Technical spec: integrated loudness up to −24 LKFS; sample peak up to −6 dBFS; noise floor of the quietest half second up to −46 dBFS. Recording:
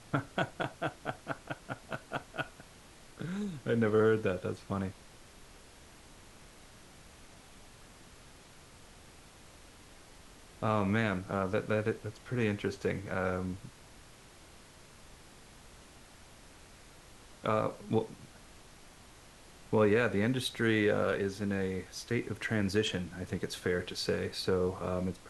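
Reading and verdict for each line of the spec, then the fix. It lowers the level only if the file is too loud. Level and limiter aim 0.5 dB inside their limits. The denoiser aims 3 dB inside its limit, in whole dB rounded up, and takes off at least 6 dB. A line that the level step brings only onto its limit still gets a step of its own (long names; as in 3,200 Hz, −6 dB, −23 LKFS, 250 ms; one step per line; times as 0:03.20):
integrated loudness −33.5 LKFS: in spec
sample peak −14.5 dBFS: in spec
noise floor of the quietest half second −55 dBFS: in spec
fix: no processing needed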